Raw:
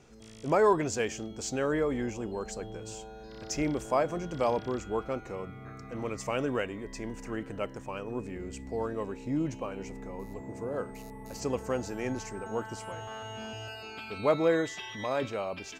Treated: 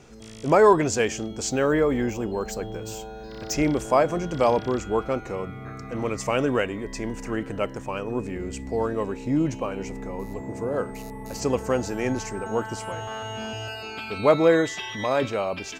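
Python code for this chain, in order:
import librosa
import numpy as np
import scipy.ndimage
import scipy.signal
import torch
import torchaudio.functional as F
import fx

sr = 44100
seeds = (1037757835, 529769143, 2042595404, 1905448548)

y = fx.resample_linear(x, sr, factor=2, at=(1.51, 3.54))
y = y * librosa.db_to_amplitude(7.5)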